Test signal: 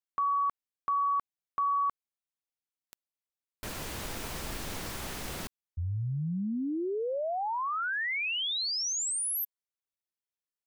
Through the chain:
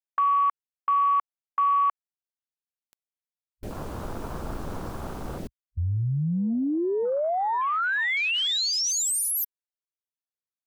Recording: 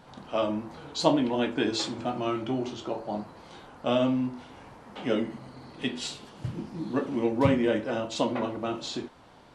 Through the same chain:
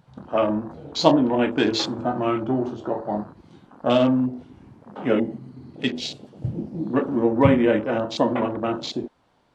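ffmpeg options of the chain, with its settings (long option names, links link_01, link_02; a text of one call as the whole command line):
ffmpeg -i in.wav -af "afwtdn=0.0112,volume=6.5dB" out.wav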